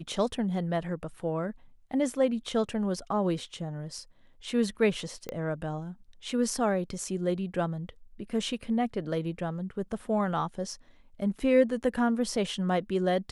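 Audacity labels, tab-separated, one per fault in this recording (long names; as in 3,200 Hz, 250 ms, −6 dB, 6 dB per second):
5.290000	5.290000	click −20 dBFS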